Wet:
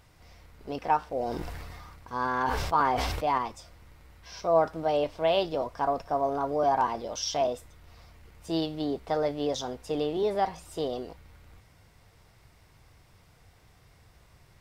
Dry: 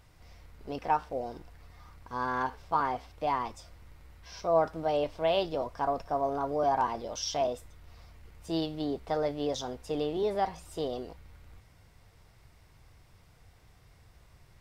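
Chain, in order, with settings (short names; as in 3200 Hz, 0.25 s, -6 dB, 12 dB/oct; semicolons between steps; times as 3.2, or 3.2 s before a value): low shelf 69 Hz -6 dB; 1.05–3.38 sustainer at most 26 dB/s; gain +2.5 dB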